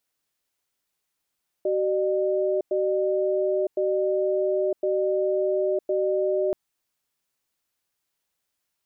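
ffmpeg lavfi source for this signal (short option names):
-f lavfi -i "aevalsrc='0.0668*(sin(2*PI*379*t)+sin(2*PI*605*t))*clip(min(mod(t,1.06),0.96-mod(t,1.06))/0.005,0,1)':d=4.88:s=44100"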